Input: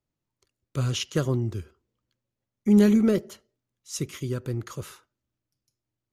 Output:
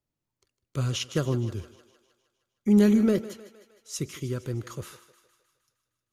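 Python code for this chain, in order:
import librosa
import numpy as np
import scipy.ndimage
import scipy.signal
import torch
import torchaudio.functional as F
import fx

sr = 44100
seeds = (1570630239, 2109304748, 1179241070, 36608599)

y = fx.echo_thinned(x, sr, ms=155, feedback_pct=60, hz=340.0, wet_db=-14.5)
y = y * 10.0 ** (-1.5 / 20.0)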